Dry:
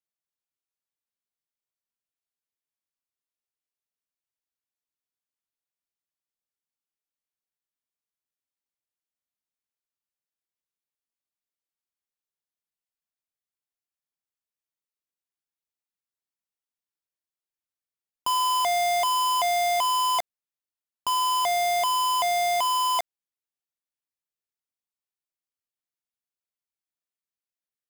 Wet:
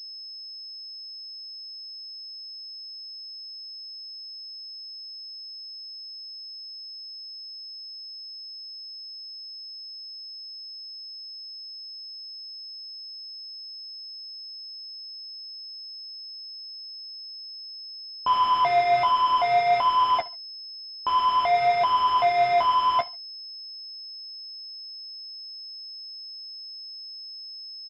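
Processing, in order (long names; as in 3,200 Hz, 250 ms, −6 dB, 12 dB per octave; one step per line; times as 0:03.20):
repeating echo 71 ms, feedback 34%, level −22 dB
flanger 0.55 Hz, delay 8.7 ms, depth 8.5 ms, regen +37%
switching amplifier with a slow clock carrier 5,200 Hz
level +7 dB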